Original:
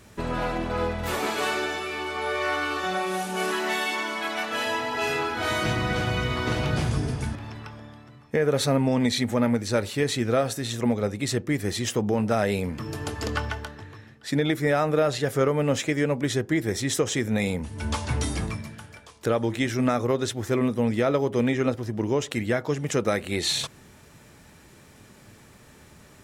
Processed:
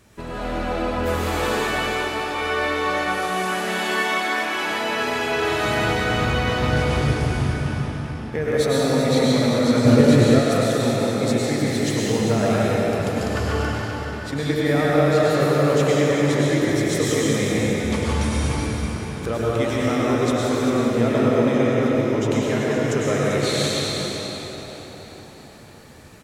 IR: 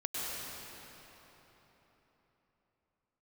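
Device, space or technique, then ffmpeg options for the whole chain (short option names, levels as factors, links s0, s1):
cave: -filter_complex "[0:a]aecho=1:1:393:0.335[s0];[1:a]atrim=start_sample=2205[s1];[s0][s1]afir=irnorm=-1:irlink=0,asettb=1/sr,asplit=3[s2][s3][s4];[s2]atrim=end=9.854[s5];[s3]atrim=start=9.85:end=10.39,asetpts=PTS-STARTPTS,afade=t=in:d=0.004:c=qsin,afade=t=out:st=0.536:d=0.004:c=qsin,lowshelf=f=470:g=9.5[s6];[s4]atrim=start=10.386[s7];[s5][s6]acrossfade=d=0.004:c1=hsin:c2=qsin[s8];[s8][s7]acrossfade=d=0.004:c1=qsin:c2=hsin,asplit=7[s9][s10][s11][s12][s13][s14][s15];[s10]adelay=382,afreqshift=53,volume=0.158[s16];[s11]adelay=764,afreqshift=106,volume=0.0933[s17];[s12]adelay=1146,afreqshift=159,volume=0.055[s18];[s13]adelay=1528,afreqshift=212,volume=0.0327[s19];[s14]adelay=1910,afreqshift=265,volume=0.0193[s20];[s15]adelay=2292,afreqshift=318,volume=0.0114[s21];[s9][s16][s17][s18][s19][s20][s21]amix=inputs=7:normalize=0,volume=0.891"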